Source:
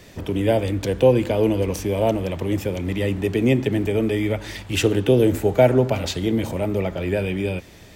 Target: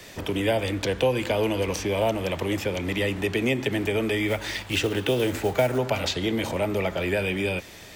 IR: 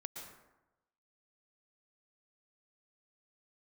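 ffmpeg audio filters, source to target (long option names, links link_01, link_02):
-filter_complex "[0:a]lowshelf=frequency=430:gain=-10,acrossover=split=240|700|6100[link_01][link_02][link_03][link_04];[link_01]acompressor=threshold=-34dB:ratio=4[link_05];[link_02]acompressor=threshold=-32dB:ratio=4[link_06];[link_03]acompressor=threshold=-30dB:ratio=4[link_07];[link_04]acompressor=threshold=-51dB:ratio=4[link_08];[link_05][link_06][link_07][link_08]amix=inputs=4:normalize=0,asettb=1/sr,asplit=3[link_09][link_10][link_11];[link_09]atrim=end=4.284[link_12];[link_10]atrim=start=4.28:end=5.78,asetpts=PTS-STARTPTS,afade=type=in:duration=0.004:curve=qsin,afade=type=out:start_time=1.496:duration=0.004:curve=qsin,acrusher=bits=5:mode=log:mix=0:aa=0.000001[link_13];[link_11]atrim=start=5.776[link_14];[link_12][link_13]acrossfade=duration=0.004:curve1=hsin:curve2=qsin[link_15];[link_15][link_14]acrossfade=duration=0.004:curve1=qsin:curve2=hsin,volume=5dB"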